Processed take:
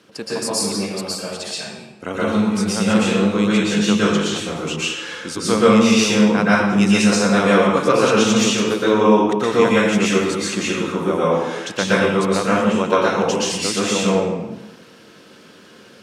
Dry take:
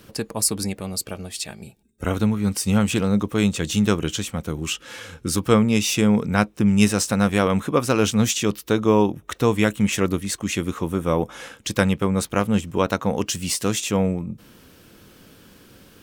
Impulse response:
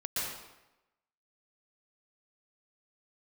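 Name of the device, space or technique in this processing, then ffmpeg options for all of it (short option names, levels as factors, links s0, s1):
supermarket ceiling speaker: -filter_complex "[0:a]highpass=220,lowpass=6800[s0];[1:a]atrim=start_sample=2205[s1];[s0][s1]afir=irnorm=-1:irlink=0,volume=1.19"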